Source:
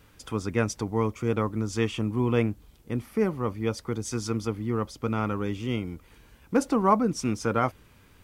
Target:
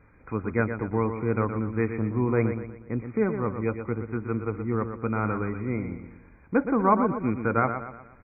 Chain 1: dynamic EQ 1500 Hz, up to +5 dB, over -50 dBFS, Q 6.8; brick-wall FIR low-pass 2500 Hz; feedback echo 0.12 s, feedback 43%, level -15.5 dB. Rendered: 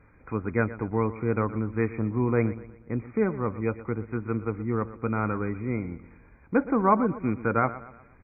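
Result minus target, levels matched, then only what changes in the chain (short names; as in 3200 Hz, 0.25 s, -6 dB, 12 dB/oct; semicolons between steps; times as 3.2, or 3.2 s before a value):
echo-to-direct -7 dB
change: feedback echo 0.12 s, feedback 43%, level -8.5 dB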